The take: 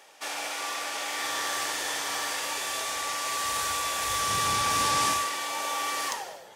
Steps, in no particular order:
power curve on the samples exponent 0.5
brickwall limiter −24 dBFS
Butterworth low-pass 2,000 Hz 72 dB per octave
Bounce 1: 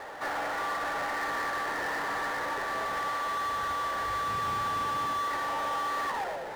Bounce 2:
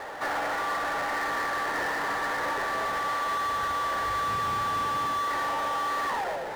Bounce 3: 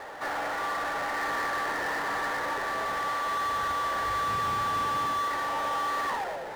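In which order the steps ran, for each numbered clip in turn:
brickwall limiter, then Butterworth low-pass, then power curve on the samples
Butterworth low-pass, then power curve on the samples, then brickwall limiter
Butterworth low-pass, then brickwall limiter, then power curve on the samples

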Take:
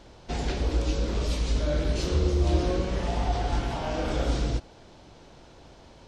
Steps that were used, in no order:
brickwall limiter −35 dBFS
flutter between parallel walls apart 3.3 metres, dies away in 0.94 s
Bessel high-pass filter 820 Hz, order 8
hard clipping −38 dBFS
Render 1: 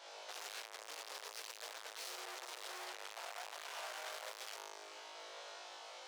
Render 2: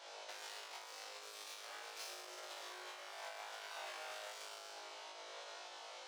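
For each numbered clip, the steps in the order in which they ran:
flutter between parallel walls, then hard clipping, then Bessel high-pass filter, then brickwall limiter
hard clipping, then flutter between parallel walls, then brickwall limiter, then Bessel high-pass filter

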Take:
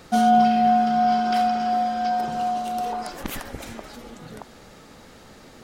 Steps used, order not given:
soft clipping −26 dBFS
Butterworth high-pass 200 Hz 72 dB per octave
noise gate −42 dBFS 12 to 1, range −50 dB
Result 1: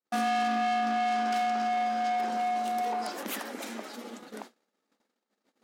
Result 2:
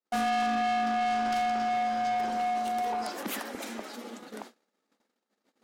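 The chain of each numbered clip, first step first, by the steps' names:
soft clipping, then Butterworth high-pass, then noise gate
Butterworth high-pass, then noise gate, then soft clipping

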